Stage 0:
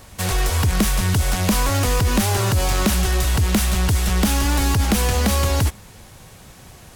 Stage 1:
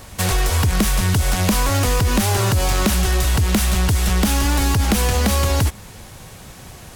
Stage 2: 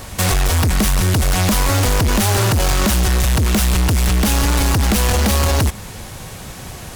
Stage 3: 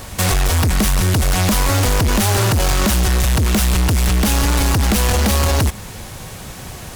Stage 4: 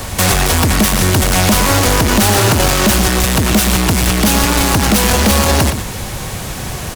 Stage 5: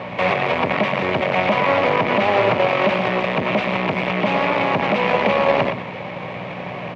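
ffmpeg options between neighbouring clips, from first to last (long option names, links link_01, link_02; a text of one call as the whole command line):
ffmpeg -i in.wav -af "acompressor=threshold=-20dB:ratio=2.5,volume=4.5dB" out.wav
ffmpeg -i in.wav -af "volume=19.5dB,asoftclip=hard,volume=-19.5dB,volume=6.5dB" out.wav
ffmpeg -i in.wav -af "acrusher=bits=6:mix=0:aa=0.5" out.wav
ffmpeg -i in.wav -filter_complex "[0:a]acrossover=split=150|1200|4200[link_01][link_02][link_03][link_04];[link_01]alimiter=limit=-21.5dB:level=0:latency=1[link_05];[link_05][link_02][link_03][link_04]amix=inputs=4:normalize=0,asoftclip=type=tanh:threshold=-14.5dB,asplit=2[link_06][link_07];[link_07]adelay=116.6,volume=-8dB,highshelf=frequency=4000:gain=-2.62[link_08];[link_06][link_08]amix=inputs=2:normalize=0,volume=8.5dB" out.wav
ffmpeg -i in.wav -af "aeval=exprs='(tanh(2.51*val(0)+0.65)-tanh(0.65))/2.51':channel_layout=same,aeval=exprs='val(0)+0.0631*(sin(2*PI*60*n/s)+sin(2*PI*2*60*n/s)/2+sin(2*PI*3*60*n/s)/3+sin(2*PI*4*60*n/s)/4+sin(2*PI*5*60*n/s)/5)':channel_layout=same,highpass=frequency=160:width=0.5412,highpass=frequency=160:width=1.3066,equalizer=frequency=220:width_type=q:width=4:gain=-8,equalizer=frequency=310:width_type=q:width=4:gain=-7,equalizer=frequency=590:width_type=q:width=4:gain=8,equalizer=frequency=990:width_type=q:width=4:gain=3,equalizer=frequency=1500:width_type=q:width=4:gain=-7,equalizer=frequency=2300:width_type=q:width=4:gain=6,lowpass=frequency=2700:width=0.5412,lowpass=frequency=2700:width=1.3066" out.wav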